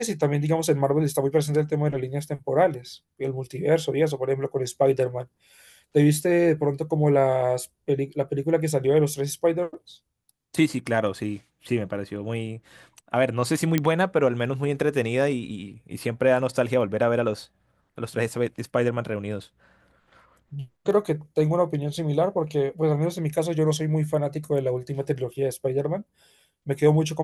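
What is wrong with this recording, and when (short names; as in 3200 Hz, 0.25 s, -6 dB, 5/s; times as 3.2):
13.78 pop -8 dBFS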